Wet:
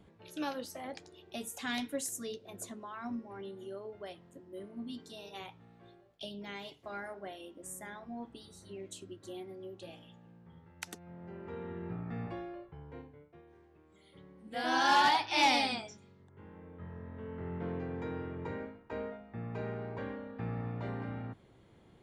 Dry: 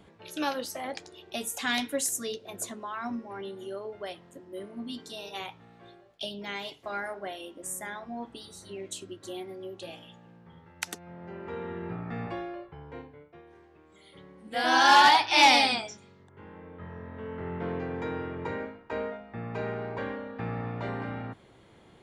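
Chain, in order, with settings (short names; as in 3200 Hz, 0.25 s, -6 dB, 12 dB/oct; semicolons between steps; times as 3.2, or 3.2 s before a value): low shelf 360 Hz +7.5 dB; gain -9 dB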